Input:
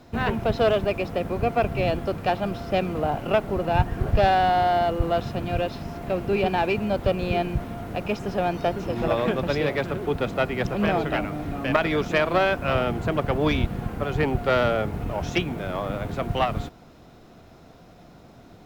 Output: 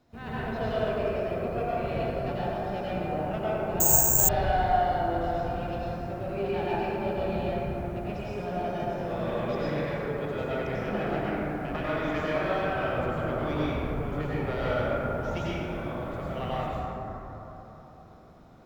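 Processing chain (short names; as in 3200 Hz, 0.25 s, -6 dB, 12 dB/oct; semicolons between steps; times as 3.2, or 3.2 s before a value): plate-style reverb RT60 3.8 s, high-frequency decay 0.3×, pre-delay 80 ms, DRR -9.5 dB; 3.8–4.29 careless resampling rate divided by 6×, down none, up zero stuff; gain -16.5 dB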